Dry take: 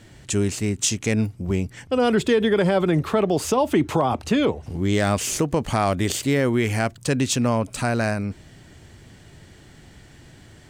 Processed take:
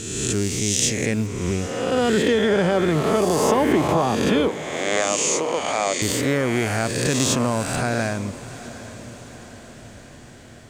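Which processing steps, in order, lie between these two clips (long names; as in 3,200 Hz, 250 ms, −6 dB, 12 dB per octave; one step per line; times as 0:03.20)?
peak hold with a rise ahead of every peak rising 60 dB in 1.53 s
0:04.48–0:06.02: loudspeaker in its box 450–8,500 Hz, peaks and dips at 550 Hz +4 dB, 1,400 Hz −5 dB, 2,300 Hz +6 dB, 3,600 Hz +3 dB, 6,800 Hz +7 dB
on a send: feedback delay with all-pass diffusion 773 ms, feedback 57%, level −15.5 dB
on the sum: level −2.5 dB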